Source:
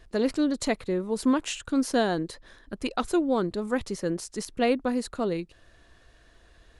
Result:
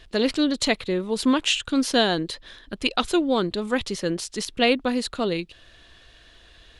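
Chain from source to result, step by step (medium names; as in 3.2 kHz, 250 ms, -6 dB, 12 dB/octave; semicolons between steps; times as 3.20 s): peaking EQ 3.3 kHz +12 dB 1.2 oct; trim +2.5 dB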